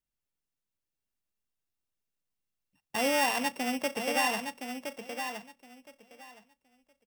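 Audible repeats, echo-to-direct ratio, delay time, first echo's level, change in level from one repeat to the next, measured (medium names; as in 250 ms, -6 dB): 2, -7.0 dB, 1017 ms, -7.0 dB, -15.0 dB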